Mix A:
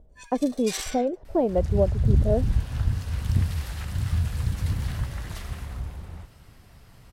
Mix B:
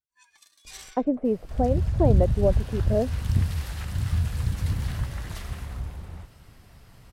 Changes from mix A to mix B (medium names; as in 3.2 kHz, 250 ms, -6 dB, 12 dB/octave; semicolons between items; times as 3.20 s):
speech: entry +0.65 s; first sound -11.0 dB